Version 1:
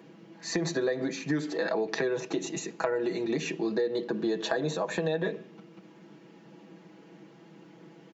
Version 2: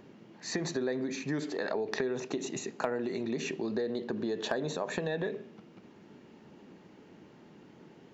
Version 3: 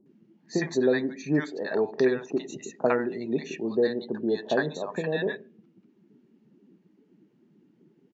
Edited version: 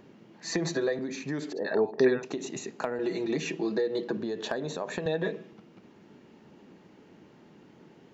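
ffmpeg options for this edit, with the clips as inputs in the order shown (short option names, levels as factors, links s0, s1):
-filter_complex "[0:a]asplit=3[s0][s1][s2];[1:a]asplit=5[s3][s4][s5][s6][s7];[s3]atrim=end=0.442[s8];[s0]atrim=start=0.438:end=0.992[s9];[s4]atrim=start=0.988:end=1.532[s10];[2:a]atrim=start=1.528:end=2.232[s11];[s5]atrim=start=2.228:end=2.992[s12];[s1]atrim=start=2.988:end=4.172[s13];[s6]atrim=start=4.168:end=5.062[s14];[s2]atrim=start=5.058:end=5.532[s15];[s7]atrim=start=5.528[s16];[s8][s9]acrossfade=d=0.004:c1=hsin:c2=hsin[s17];[s17][s10]acrossfade=d=0.004:c1=hsin:c2=hsin[s18];[s18][s11]acrossfade=d=0.004:c1=hsin:c2=hsin[s19];[s19][s12]acrossfade=d=0.004:c1=hsin:c2=hsin[s20];[s20][s13]acrossfade=d=0.004:c1=hsin:c2=hsin[s21];[s21][s14]acrossfade=d=0.004:c1=hsin:c2=hsin[s22];[s22][s15]acrossfade=d=0.004:c1=hsin:c2=hsin[s23];[s23][s16]acrossfade=d=0.004:c1=hsin:c2=hsin"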